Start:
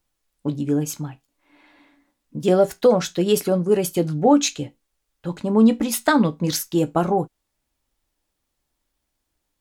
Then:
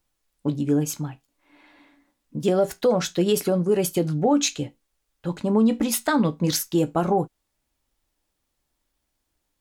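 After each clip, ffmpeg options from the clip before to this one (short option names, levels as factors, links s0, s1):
-af "alimiter=limit=0.266:level=0:latency=1:release=79"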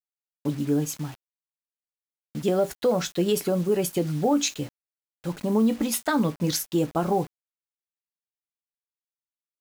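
-af "acrusher=bits=6:mix=0:aa=0.000001,volume=0.75"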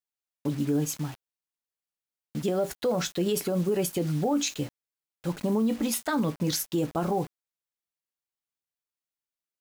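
-af "alimiter=limit=0.119:level=0:latency=1:release=38"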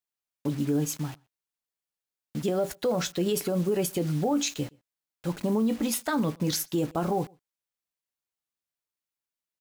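-filter_complex "[0:a]asplit=2[s0][s1];[s1]adelay=122.4,volume=0.0398,highshelf=f=4000:g=-2.76[s2];[s0][s2]amix=inputs=2:normalize=0"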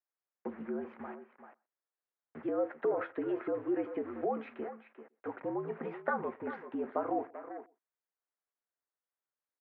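-filter_complex "[0:a]acompressor=threshold=0.0447:ratio=2.5,asplit=2[s0][s1];[s1]adelay=390,highpass=300,lowpass=3400,asoftclip=type=hard:threshold=0.0376,volume=0.355[s2];[s0][s2]amix=inputs=2:normalize=0,highpass=f=400:t=q:w=0.5412,highpass=f=400:t=q:w=1.307,lowpass=f=2000:t=q:w=0.5176,lowpass=f=2000:t=q:w=0.7071,lowpass=f=2000:t=q:w=1.932,afreqshift=-65"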